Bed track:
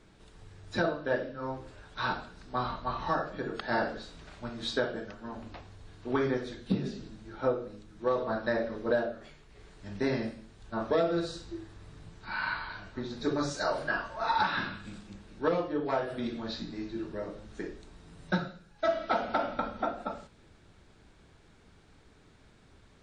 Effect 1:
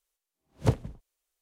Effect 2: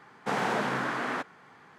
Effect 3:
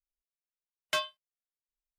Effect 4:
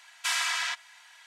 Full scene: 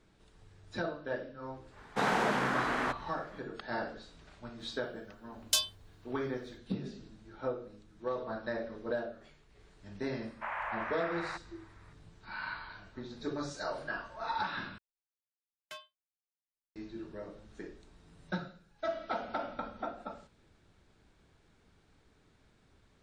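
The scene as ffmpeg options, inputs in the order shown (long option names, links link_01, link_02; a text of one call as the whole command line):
ffmpeg -i bed.wav -i cue0.wav -i cue1.wav -i cue2.wav -filter_complex "[2:a]asplit=2[link_01][link_02];[3:a]asplit=2[link_03][link_04];[0:a]volume=-7dB[link_05];[link_03]aexciter=amount=11.1:drive=5.6:freq=3300[link_06];[link_02]highpass=frequency=530:width_type=q:width=0.5412,highpass=frequency=530:width_type=q:width=1.307,lowpass=frequency=2500:width_type=q:width=0.5176,lowpass=frequency=2500:width_type=q:width=0.7071,lowpass=frequency=2500:width_type=q:width=1.932,afreqshift=140[link_07];[link_05]asplit=2[link_08][link_09];[link_08]atrim=end=14.784[link_10];[link_04]atrim=end=1.98,asetpts=PTS-STARTPTS,volume=-17dB[link_11];[link_09]atrim=start=16.756[link_12];[link_01]atrim=end=1.78,asetpts=PTS-STARTPTS,volume=-1dB,afade=type=in:duration=0.1,afade=type=out:start_time=1.68:duration=0.1,adelay=1700[link_13];[link_06]atrim=end=1.98,asetpts=PTS-STARTPTS,volume=-11.5dB,afade=type=in:duration=0.004:curve=hsin,afade=type=out:start_time=1.976:duration=0.004:curve=hsin,adelay=4600[link_14];[link_07]atrim=end=1.78,asetpts=PTS-STARTPTS,volume=-7.5dB,afade=type=in:duration=0.004:curve=hsin,afade=type=out:start_time=1.776:duration=0.004:curve=hsin,adelay=10150[link_15];[link_10][link_11]acrossfade=duration=0.004:curve1=hsin:curve2=hsin[link_16];[link_16][link_12]acrossfade=duration=0.004:curve1=hsin:curve2=hsin[link_17];[link_17][link_13][link_14][link_15]amix=inputs=4:normalize=0" out.wav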